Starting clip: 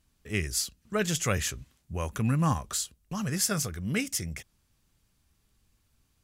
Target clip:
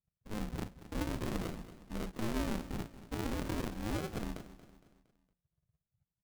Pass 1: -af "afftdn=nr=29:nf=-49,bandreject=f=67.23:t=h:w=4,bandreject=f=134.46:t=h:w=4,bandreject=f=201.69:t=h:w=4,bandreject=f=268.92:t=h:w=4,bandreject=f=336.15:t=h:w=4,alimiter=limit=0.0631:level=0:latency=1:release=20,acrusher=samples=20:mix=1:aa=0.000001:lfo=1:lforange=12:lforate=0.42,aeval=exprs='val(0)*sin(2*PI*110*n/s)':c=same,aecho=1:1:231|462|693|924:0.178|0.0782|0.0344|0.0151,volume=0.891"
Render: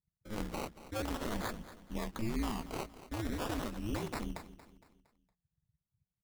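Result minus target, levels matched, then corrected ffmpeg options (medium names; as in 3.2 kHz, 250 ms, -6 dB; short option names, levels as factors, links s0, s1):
decimation with a swept rate: distortion -7 dB
-af "afftdn=nr=29:nf=-49,bandreject=f=67.23:t=h:w=4,bandreject=f=134.46:t=h:w=4,bandreject=f=201.69:t=h:w=4,bandreject=f=268.92:t=h:w=4,bandreject=f=336.15:t=h:w=4,alimiter=limit=0.0631:level=0:latency=1:release=20,acrusher=samples=67:mix=1:aa=0.000001:lfo=1:lforange=40.2:lforate=0.42,aeval=exprs='val(0)*sin(2*PI*110*n/s)':c=same,aecho=1:1:231|462|693|924:0.178|0.0782|0.0344|0.0151,volume=0.891"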